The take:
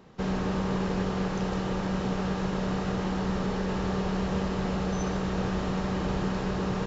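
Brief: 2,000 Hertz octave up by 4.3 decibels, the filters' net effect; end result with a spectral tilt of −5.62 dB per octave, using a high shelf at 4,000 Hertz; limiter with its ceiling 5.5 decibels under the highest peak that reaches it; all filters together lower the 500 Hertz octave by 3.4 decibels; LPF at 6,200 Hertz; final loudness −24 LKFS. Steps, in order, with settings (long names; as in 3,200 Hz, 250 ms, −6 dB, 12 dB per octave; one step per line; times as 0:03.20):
low-pass filter 6,200 Hz
parametric band 500 Hz −4.5 dB
parametric band 2,000 Hz +7 dB
high-shelf EQ 4,000 Hz −5.5 dB
level +8 dB
brickwall limiter −15 dBFS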